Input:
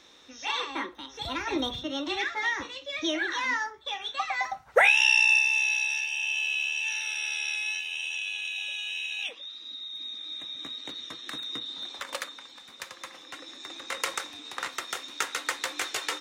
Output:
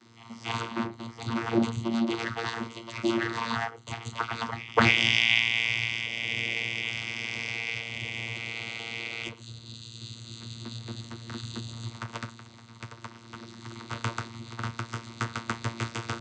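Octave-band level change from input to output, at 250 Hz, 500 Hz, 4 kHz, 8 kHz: +7.0, -0.5, -1.0, -7.5 dB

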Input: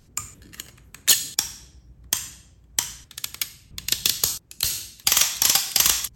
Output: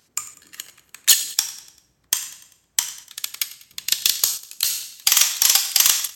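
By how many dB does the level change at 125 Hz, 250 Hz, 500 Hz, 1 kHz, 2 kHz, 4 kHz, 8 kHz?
under -15 dB, n/a, -4.0 dB, -0.5 dB, +2.0 dB, +3.0 dB, +3.0 dB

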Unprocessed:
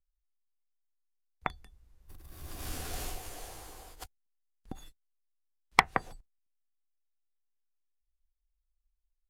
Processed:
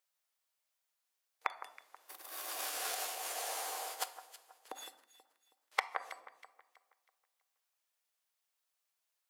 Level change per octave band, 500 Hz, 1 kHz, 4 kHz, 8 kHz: -3.0, -6.0, -1.0, +4.0 dB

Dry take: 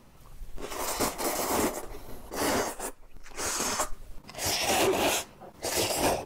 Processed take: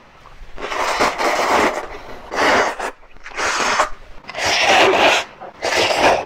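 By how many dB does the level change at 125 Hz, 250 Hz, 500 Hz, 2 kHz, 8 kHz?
+4.5, +7.5, +12.5, +17.5, +3.5 dB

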